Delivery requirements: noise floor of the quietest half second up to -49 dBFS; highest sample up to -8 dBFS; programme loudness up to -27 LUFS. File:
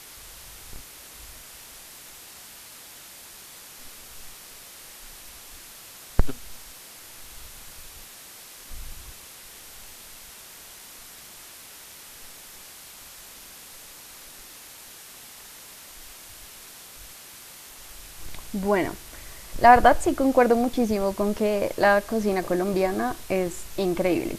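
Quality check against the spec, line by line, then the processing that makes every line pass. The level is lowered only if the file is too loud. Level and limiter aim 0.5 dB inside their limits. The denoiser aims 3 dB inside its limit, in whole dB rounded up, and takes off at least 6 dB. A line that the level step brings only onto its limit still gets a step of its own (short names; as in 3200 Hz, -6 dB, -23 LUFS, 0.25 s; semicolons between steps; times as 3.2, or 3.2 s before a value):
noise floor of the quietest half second -45 dBFS: fail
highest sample -2.5 dBFS: fail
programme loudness -22.5 LUFS: fail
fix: gain -5 dB; limiter -8.5 dBFS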